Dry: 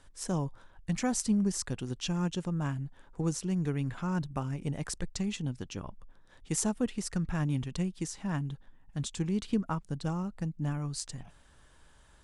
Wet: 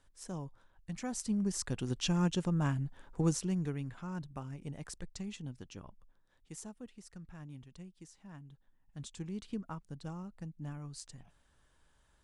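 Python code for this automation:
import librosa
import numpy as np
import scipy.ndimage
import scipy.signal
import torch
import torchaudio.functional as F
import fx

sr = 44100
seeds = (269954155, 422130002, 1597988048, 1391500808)

y = fx.gain(x, sr, db=fx.line((0.97, -10.0), (1.91, 1.0), (3.3, 1.0), (3.94, -9.0), (5.78, -9.0), (6.77, -18.0), (8.45, -18.0), (9.06, -10.0)))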